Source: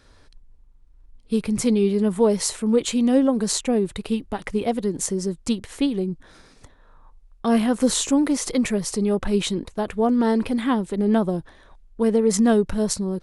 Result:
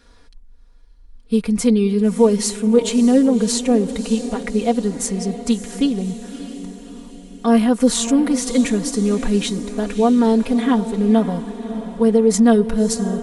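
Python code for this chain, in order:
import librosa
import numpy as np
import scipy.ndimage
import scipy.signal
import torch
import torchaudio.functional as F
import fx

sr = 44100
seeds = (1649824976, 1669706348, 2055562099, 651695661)

y = x + 0.82 * np.pad(x, (int(4.2 * sr / 1000.0), 0))[:len(x)]
y = fx.echo_diffused(y, sr, ms=601, feedback_pct=52, wet_db=-12)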